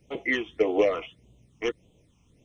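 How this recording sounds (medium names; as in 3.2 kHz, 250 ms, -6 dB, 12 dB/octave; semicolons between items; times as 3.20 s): phasing stages 8, 1.7 Hz, lowest notch 520–1700 Hz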